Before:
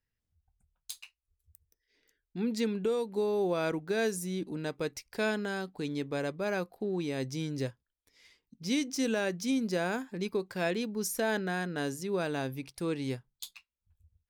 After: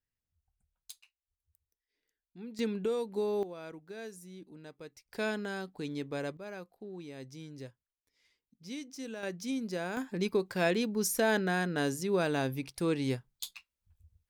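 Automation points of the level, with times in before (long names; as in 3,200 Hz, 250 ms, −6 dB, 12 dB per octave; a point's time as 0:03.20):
−6.5 dB
from 0:00.92 −13 dB
from 0:02.59 −2 dB
from 0:03.43 −14 dB
from 0:05.09 −3 dB
from 0:06.37 −11.5 dB
from 0:09.23 −5 dB
from 0:09.97 +2.5 dB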